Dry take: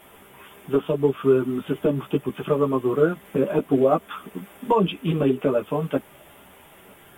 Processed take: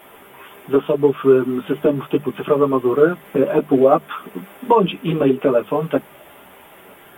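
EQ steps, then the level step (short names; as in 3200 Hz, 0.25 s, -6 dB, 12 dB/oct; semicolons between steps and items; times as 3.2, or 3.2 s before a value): low shelf 160 Hz -10 dB; bell 6800 Hz -8 dB 1.7 oct; notches 50/100/150/200 Hz; +7.0 dB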